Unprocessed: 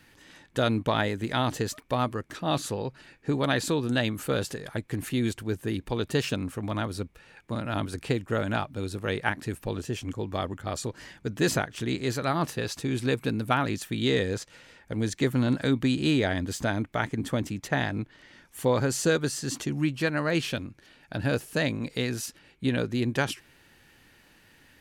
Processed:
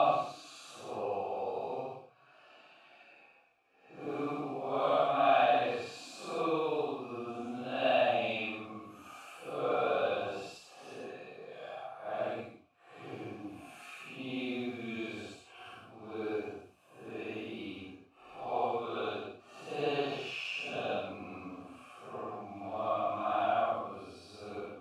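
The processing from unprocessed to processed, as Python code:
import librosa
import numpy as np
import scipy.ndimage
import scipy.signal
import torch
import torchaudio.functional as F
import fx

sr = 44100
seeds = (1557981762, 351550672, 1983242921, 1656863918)

y = fx.quant_companded(x, sr, bits=6)
y = fx.paulstretch(y, sr, seeds[0], factor=5.5, window_s=0.1, from_s=2.54)
y = fx.vowel_filter(y, sr, vowel='a')
y = y * 10.0 ** (8.5 / 20.0)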